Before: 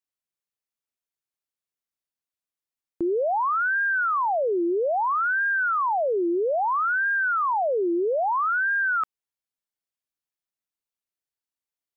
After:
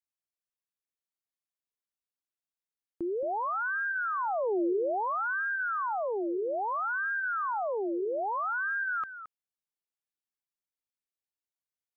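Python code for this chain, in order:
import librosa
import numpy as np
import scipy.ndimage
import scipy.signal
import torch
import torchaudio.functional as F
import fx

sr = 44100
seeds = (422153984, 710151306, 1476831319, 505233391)

y = fx.low_shelf(x, sr, hz=250.0, db=11.0, at=(4.19, 5.41))
y = y + 10.0 ** (-12.0 / 20.0) * np.pad(y, (int(221 * sr / 1000.0), 0))[:len(y)]
y = F.gain(torch.from_numpy(y), -8.0).numpy()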